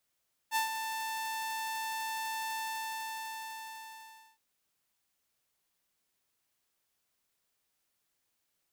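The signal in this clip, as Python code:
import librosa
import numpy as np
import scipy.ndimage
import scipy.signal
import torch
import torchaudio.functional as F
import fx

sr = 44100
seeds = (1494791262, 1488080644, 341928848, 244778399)

y = fx.adsr_tone(sr, wave='saw', hz=888.0, attack_ms=50.0, decay_ms=119.0, sustain_db=-8.0, held_s=2.05, release_ms=1820.0, level_db=-24.0)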